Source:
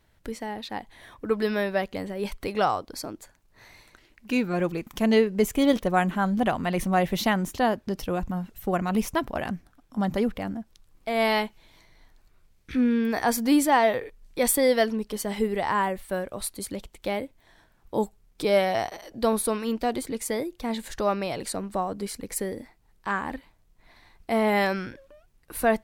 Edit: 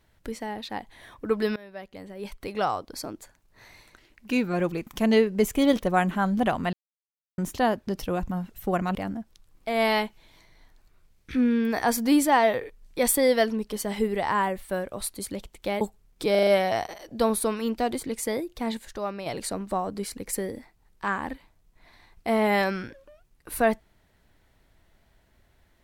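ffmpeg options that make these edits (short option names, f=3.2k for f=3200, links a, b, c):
-filter_complex "[0:a]asplit=12[a][b][c][d][e][f][g][h][i][j][k][l];[a]atrim=end=1.56,asetpts=PTS-STARTPTS,afade=t=out:st=1.556:d=0.004:c=hsin:silence=0.0668344[m];[b]atrim=start=1.56:end=6.73,asetpts=PTS-STARTPTS,afade=t=in:d=1.52:silence=0.0668344,afade=t=out:st=5.166:d=0.004:c=hsin[n];[c]atrim=start=6.73:end=7.38,asetpts=PTS-STARTPTS,volume=0[o];[d]atrim=start=7.38:end=8.952,asetpts=PTS-STARTPTS,afade=t=in:d=0.004:c=hsin[p];[e]atrim=start=10.348:end=17.212[q];[f]atrim=start=17.998:end=18.542[r];[g]atrim=start=18.498:end=18.542[s];[h]atrim=start=18.498:end=18.542[t];[i]atrim=start=18.498:end=18.542[u];[j]atrim=start=18.498:end=20.802[v];[k]atrim=start=20.798:end=21.292,asetpts=PTS-STARTPTS,volume=-6.5dB[w];[l]atrim=start=21.288[x];[m][n][o][p]concat=n=4:v=0:a=1[y];[y][q]acrossfade=d=0.004:c1=hsin:c2=hsin[z];[z][r]acrossfade=d=0.004:c1=hsin:c2=hsin[aa];[aa][s]acrossfade=d=0.004:c1=hsin:c2=hsin[ab];[ab][t]acrossfade=d=0.004:c1=hsin:c2=hsin[ac];[ac][u]acrossfade=d=0.004:c1=hsin:c2=hsin[ad];[ad][v]acrossfade=d=0.004:c1=hsin:c2=hsin[ae];[ae][w]acrossfade=d=0.004:c1=hsin:c2=hsin[af];[af][x]acrossfade=d=0.004:c1=hsin:c2=hsin"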